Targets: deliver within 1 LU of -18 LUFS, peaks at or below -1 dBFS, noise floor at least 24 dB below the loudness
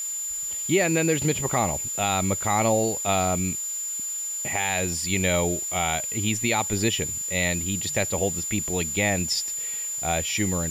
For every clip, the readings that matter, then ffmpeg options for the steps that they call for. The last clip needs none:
steady tone 7100 Hz; tone level -28 dBFS; noise floor -31 dBFS; noise floor target -48 dBFS; loudness -24.0 LUFS; peak -10.5 dBFS; loudness target -18.0 LUFS
-> -af "bandreject=f=7.1k:w=30"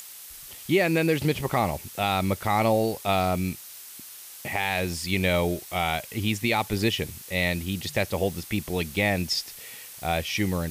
steady tone none; noise floor -44 dBFS; noise floor target -50 dBFS
-> -af "afftdn=nr=6:nf=-44"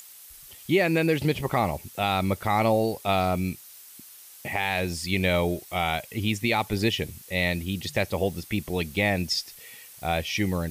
noise floor -48 dBFS; noise floor target -50 dBFS
-> -af "afftdn=nr=6:nf=-48"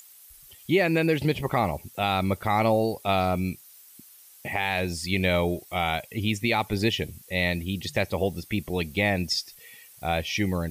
noise floor -51 dBFS; loudness -26.0 LUFS; peak -11.5 dBFS; loudness target -18.0 LUFS
-> -af "volume=8dB"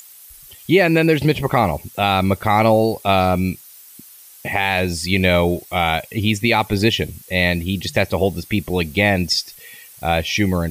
loudness -18.0 LUFS; peak -3.5 dBFS; noise floor -43 dBFS

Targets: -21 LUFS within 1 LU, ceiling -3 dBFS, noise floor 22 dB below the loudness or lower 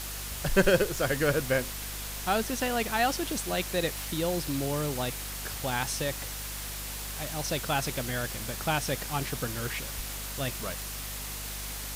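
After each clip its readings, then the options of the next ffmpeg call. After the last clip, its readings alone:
hum 50 Hz; harmonics up to 250 Hz; hum level -39 dBFS; noise floor -37 dBFS; noise floor target -53 dBFS; loudness -30.5 LUFS; peak -9.0 dBFS; loudness target -21.0 LUFS
-> -af "bandreject=f=50:t=h:w=4,bandreject=f=100:t=h:w=4,bandreject=f=150:t=h:w=4,bandreject=f=200:t=h:w=4,bandreject=f=250:t=h:w=4"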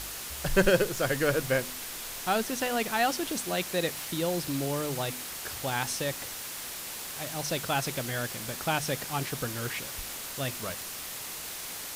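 hum none; noise floor -39 dBFS; noise floor target -53 dBFS
-> -af "afftdn=nr=14:nf=-39"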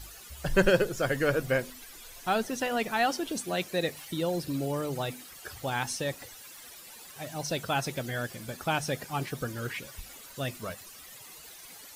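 noise floor -49 dBFS; noise floor target -53 dBFS
-> -af "afftdn=nr=6:nf=-49"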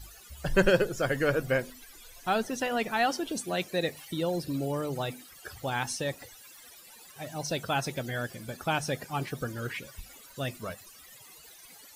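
noise floor -52 dBFS; noise floor target -53 dBFS
-> -af "afftdn=nr=6:nf=-52"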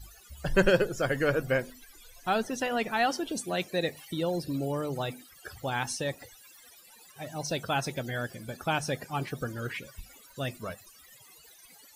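noise floor -55 dBFS; loudness -31.0 LUFS; peak -10.0 dBFS; loudness target -21.0 LUFS
-> -af "volume=10dB,alimiter=limit=-3dB:level=0:latency=1"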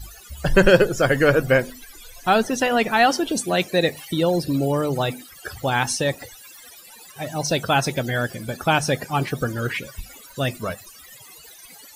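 loudness -21.5 LUFS; peak -3.0 dBFS; noise floor -45 dBFS

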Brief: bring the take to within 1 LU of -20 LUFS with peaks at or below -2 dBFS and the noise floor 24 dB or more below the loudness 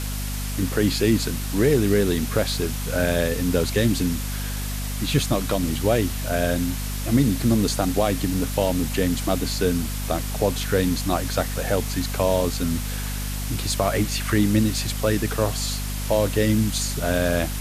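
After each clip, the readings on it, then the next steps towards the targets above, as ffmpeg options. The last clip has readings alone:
hum 50 Hz; harmonics up to 250 Hz; hum level -26 dBFS; noise floor -28 dBFS; noise floor target -47 dBFS; loudness -23.0 LUFS; peak -7.0 dBFS; loudness target -20.0 LUFS
-> -af "bandreject=f=50:t=h:w=4,bandreject=f=100:t=h:w=4,bandreject=f=150:t=h:w=4,bandreject=f=200:t=h:w=4,bandreject=f=250:t=h:w=4"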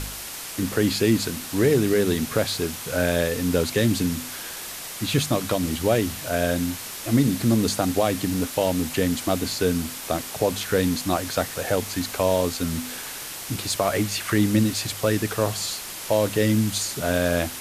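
hum none; noise floor -35 dBFS; noise floor target -48 dBFS
-> -af "afftdn=nr=13:nf=-35"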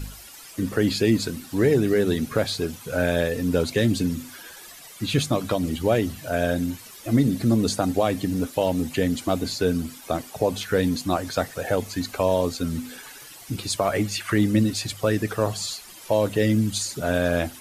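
noise floor -44 dBFS; noise floor target -48 dBFS
-> -af "afftdn=nr=6:nf=-44"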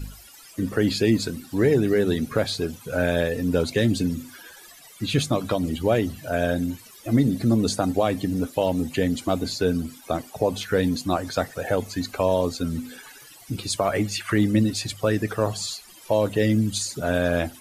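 noise floor -48 dBFS; loudness -24.0 LUFS; peak -8.0 dBFS; loudness target -20.0 LUFS
-> -af "volume=4dB"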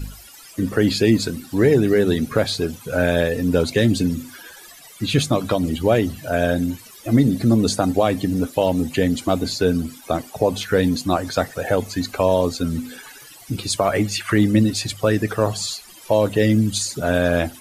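loudness -20.0 LUFS; peak -4.0 dBFS; noise floor -44 dBFS

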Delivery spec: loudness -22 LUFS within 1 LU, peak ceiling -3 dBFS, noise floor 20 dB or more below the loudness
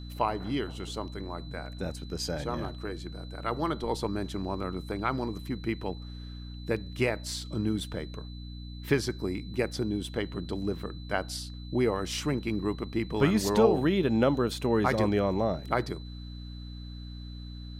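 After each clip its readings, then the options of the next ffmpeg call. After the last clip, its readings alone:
hum 60 Hz; harmonics up to 300 Hz; hum level -39 dBFS; steady tone 4000 Hz; tone level -51 dBFS; loudness -30.5 LUFS; peak -10.5 dBFS; loudness target -22.0 LUFS
-> -af "bandreject=f=60:t=h:w=6,bandreject=f=120:t=h:w=6,bandreject=f=180:t=h:w=6,bandreject=f=240:t=h:w=6,bandreject=f=300:t=h:w=6"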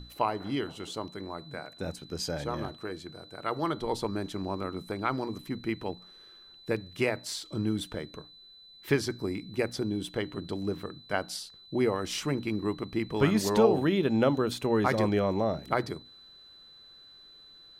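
hum none; steady tone 4000 Hz; tone level -51 dBFS
-> -af "bandreject=f=4k:w=30"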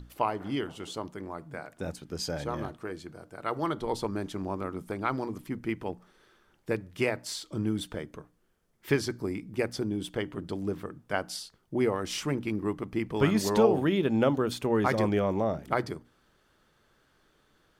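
steady tone none; loudness -31.0 LUFS; peak -10.5 dBFS; loudness target -22.0 LUFS
-> -af "volume=9dB,alimiter=limit=-3dB:level=0:latency=1"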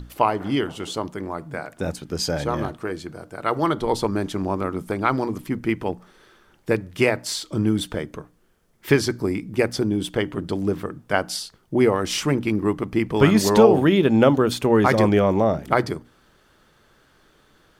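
loudness -22.0 LUFS; peak -3.0 dBFS; noise floor -59 dBFS

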